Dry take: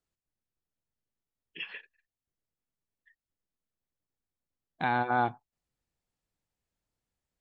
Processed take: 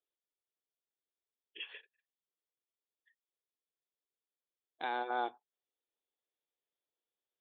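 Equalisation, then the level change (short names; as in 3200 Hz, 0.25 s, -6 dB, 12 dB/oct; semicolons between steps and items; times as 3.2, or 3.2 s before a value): ladder high-pass 340 Hz, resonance 45%; synth low-pass 3500 Hz, resonance Q 8.3; air absorption 340 m; 0.0 dB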